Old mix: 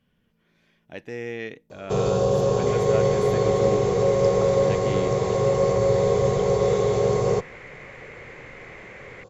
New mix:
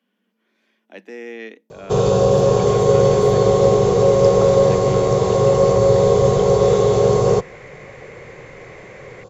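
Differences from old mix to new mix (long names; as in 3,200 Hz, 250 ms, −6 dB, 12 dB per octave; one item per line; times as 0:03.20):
speech: add Chebyshev high-pass filter 190 Hz, order 8
first sound +6.5 dB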